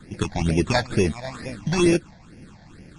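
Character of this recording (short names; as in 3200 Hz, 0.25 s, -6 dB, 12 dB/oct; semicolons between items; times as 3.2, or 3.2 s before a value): aliases and images of a low sample rate 3000 Hz, jitter 0%; phasing stages 8, 2.2 Hz, lowest notch 360–1200 Hz; MP3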